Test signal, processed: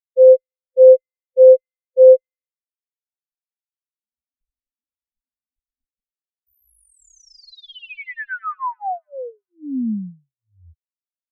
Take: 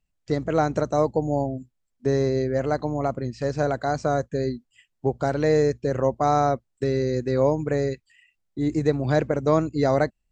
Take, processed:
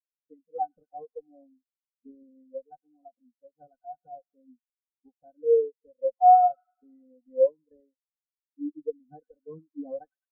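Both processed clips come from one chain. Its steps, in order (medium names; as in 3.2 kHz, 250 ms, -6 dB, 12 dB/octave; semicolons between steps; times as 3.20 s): high-pass 52 Hz 12 dB/octave; comb 4 ms, depth 89%; dynamic bell 390 Hz, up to -5 dB, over -29 dBFS, Q 1.1; in parallel at -7 dB: Schmitt trigger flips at -18.5 dBFS; on the sum: Chebyshev shaper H 4 -17 dB, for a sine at -7 dBFS; on a send: feedback echo behind a high-pass 105 ms, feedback 83%, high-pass 1.6 kHz, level -3 dB; on the sum: spectral contrast expander 4:1; trim -1.5 dB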